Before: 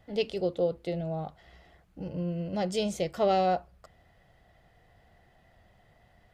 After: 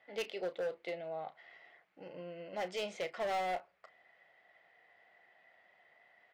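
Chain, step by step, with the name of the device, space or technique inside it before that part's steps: megaphone (BPF 510–3700 Hz; bell 2100 Hz +9 dB 0.55 oct; hard clip -29 dBFS, distortion -8 dB; doubler 33 ms -13.5 dB); gain -3.5 dB

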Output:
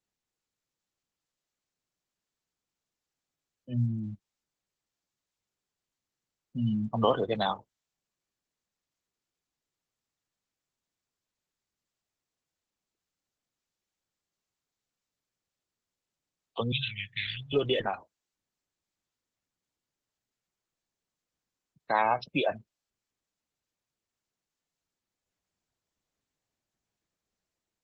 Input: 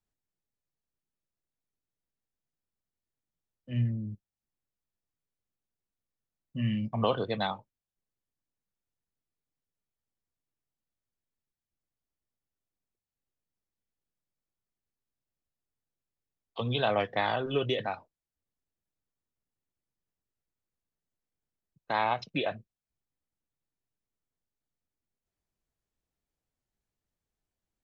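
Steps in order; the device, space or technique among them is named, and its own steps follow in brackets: 16.72–17.53 elliptic band-stop 140–2300 Hz, stop band 50 dB; noise-suppressed video call (HPF 140 Hz 6 dB/oct; spectral gate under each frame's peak -20 dB strong; AGC gain up to 3.5 dB; Opus 12 kbps 48000 Hz)

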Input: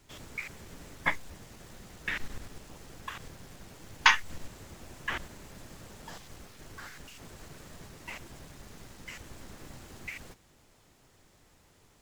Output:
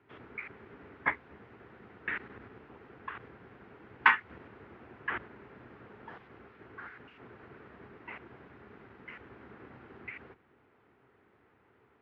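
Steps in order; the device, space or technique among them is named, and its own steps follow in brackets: sub-octave bass pedal (octaver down 2 oct, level -2 dB; speaker cabinet 86–2300 Hz, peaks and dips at 92 Hz -8 dB, 160 Hz -10 dB, 410 Hz +6 dB, 590 Hz -5 dB, 1400 Hz +4 dB); gain -1 dB

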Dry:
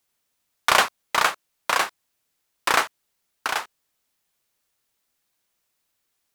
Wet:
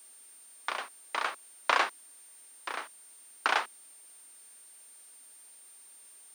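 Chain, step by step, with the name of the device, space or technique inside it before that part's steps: medium wave at night (BPF 150–4200 Hz; compressor, threshold -20 dBFS, peak gain reduction 8 dB; tremolo 0.56 Hz, depth 77%; whine 9000 Hz -52 dBFS; white noise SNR 24 dB); steep high-pass 230 Hz 48 dB/oct

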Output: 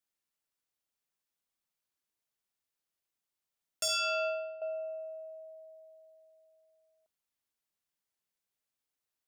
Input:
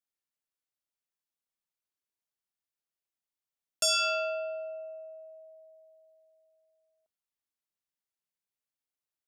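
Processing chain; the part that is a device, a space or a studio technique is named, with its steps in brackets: 3.88–4.62 expander -29 dBFS; clipper into limiter (hard clip -24.5 dBFS, distortion -21 dB; limiter -31.5 dBFS, peak gain reduction 7 dB); gain +3 dB

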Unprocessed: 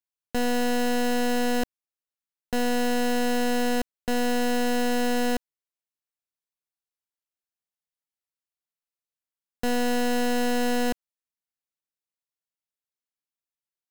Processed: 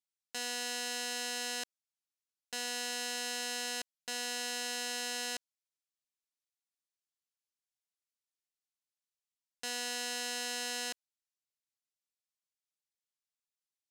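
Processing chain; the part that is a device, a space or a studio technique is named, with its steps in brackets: piezo pickup straight into a mixer (LPF 6600 Hz 12 dB/oct; differentiator); gain +4 dB

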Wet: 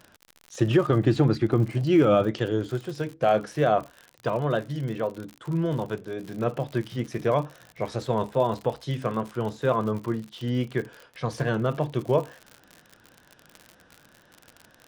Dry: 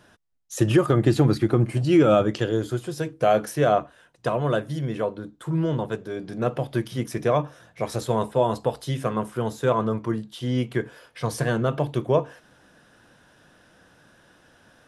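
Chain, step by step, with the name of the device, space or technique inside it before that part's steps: lo-fi chain (LPF 5200 Hz 12 dB/oct; wow and flutter; crackle 66/s -31 dBFS); gain -2 dB

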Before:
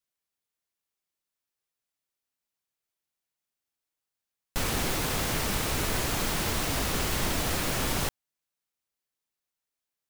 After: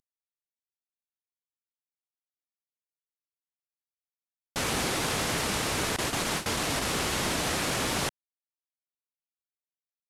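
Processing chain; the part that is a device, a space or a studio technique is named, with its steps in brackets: 5.96–6.83 gate with hold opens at -18 dBFS; early wireless headset (HPF 150 Hz 6 dB/oct; CVSD 64 kbps); gain +2 dB

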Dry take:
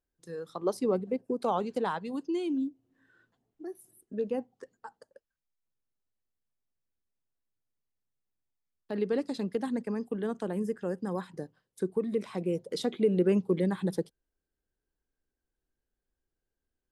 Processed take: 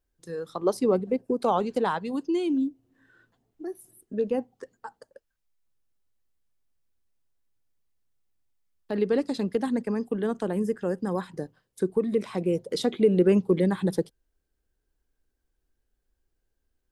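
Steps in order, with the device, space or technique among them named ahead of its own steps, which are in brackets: low shelf boost with a cut just above (low shelf 85 Hz +7.5 dB; bell 170 Hz -2 dB); gain +5 dB

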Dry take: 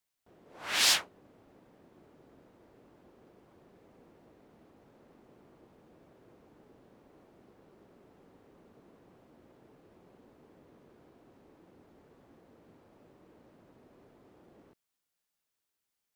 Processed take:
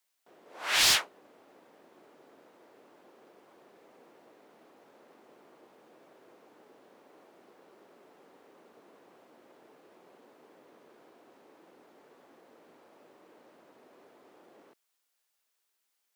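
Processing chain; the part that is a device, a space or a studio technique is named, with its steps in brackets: Bessel high-pass 480 Hz, order 2; saturation between pre-emphasis and de-emphasis (high shelf 3300 Hz +8.5 dB; soft clip -18.5 dBFS, distortion -10 dB; high shelf 3300 Hz -8.5 dB); gain +6 dB

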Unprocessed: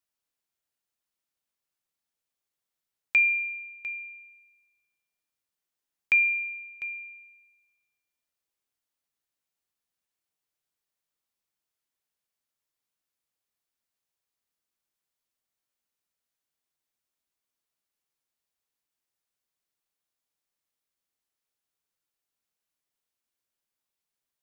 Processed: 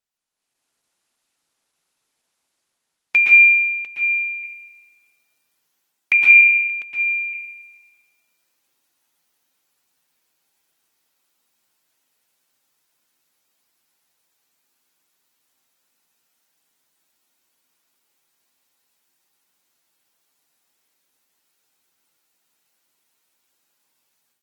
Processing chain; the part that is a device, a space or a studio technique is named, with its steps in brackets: far-field microphone of a smart speaker (reverb RT60 0.50 s, pre-delay 0.112 s, DRR -4 dB; HPF 140 Hz 12 dB/oct; AGC gain up to 14.5 dB; gain -2.5 dB; Opus 16 kbps 48000 Hz)

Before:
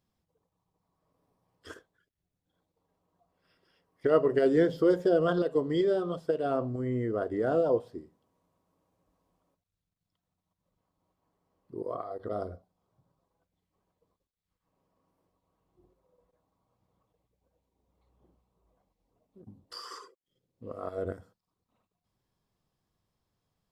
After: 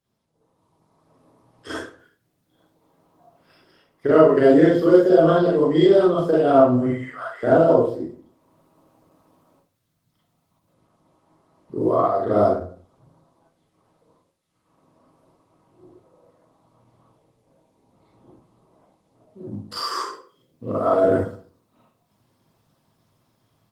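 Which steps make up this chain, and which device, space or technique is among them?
6.86–7.43 inverse Chebyshev high-pass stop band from 180 Hz, stop band 80 dB; far-field microphone of a smart speaker (reverb RT60 0.45 s, pre-delay 34 ms, DRR -7 dB; HPF 100 Hz 24 dB/oct; AGC gain up to 11 dB; gain -1 dB; Opus 20 kbps 48000 Hz)

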